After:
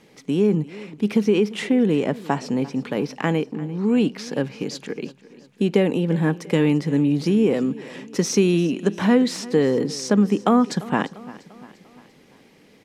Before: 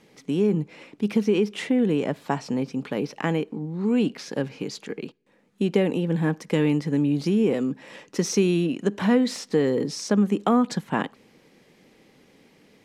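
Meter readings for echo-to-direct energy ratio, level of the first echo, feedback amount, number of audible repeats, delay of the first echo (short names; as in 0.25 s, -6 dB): -18.0 dB, -19.5 dB, 53%, 3, 0.346 s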